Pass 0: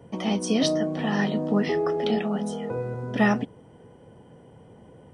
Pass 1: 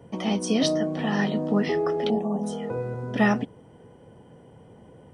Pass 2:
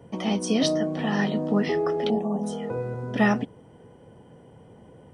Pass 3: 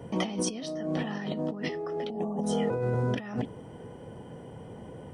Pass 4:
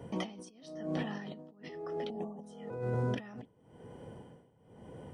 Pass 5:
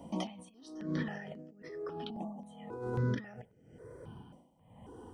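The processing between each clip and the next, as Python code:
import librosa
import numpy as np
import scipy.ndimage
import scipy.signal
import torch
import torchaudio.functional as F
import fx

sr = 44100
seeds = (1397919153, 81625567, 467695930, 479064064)

y1 = fx.spec_box(x, sr, start_s=2.09, length_s=0.34, low_hz=1200.0, high_hz=5700.0, gain_db=-21)
y2 = y1
y3 = fx.over_compress(y2, sr, threshold_db=-32.0, ratio=-1.0)
y4 = y3 * (1.0 - 0.9 / 2.0 + 0.9 / 2.0 * np.cos(2.0 * np.pi * 0.99 * (np.arange(len(y3)) / sr)))
y4 = y4 * 10.0 ** (-4.0 / 20.0)
y5 = fx.phaser_held(y4, sr, hz=3.7, low_hz=430.0, high_hz=3700.0)
y5 = y5 * 10.0 ** (2.5 / 20.0)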